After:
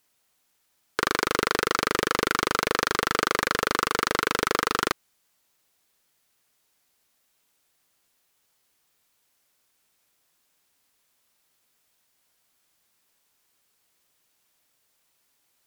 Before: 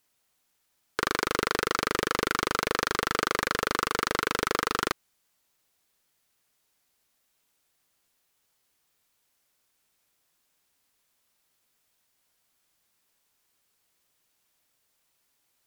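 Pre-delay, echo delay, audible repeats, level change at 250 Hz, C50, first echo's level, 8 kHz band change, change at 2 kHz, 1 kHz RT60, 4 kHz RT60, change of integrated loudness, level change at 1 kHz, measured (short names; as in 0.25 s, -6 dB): none, none, none, +2.5 dB, none, none, +3.0 dB, +3.0 dB, none, none, +3.0 dB, +3.0 dB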